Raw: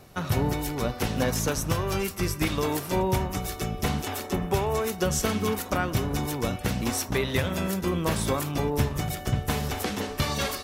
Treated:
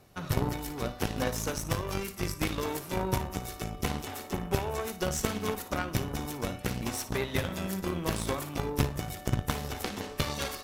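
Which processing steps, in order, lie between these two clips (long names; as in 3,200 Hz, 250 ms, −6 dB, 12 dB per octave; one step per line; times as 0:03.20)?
flutter between parallel walls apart 9.9 metres, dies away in 0.3 s
harmonic generator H 2 −11 dB, 3 −14 dB, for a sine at −12 dBFS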